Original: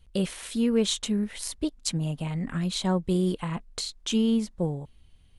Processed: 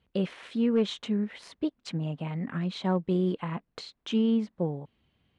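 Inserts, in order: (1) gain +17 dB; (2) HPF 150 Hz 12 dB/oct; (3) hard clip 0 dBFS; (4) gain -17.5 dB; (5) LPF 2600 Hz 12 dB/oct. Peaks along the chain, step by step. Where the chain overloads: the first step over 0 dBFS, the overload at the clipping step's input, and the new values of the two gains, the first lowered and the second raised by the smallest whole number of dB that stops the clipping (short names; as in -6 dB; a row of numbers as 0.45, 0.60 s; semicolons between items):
+9.5, +9.5, 0.0, -17.5, -17.5 dBFS; step 1, 9.5 dB; step 1 +7 dB, step 4 -7.5 dB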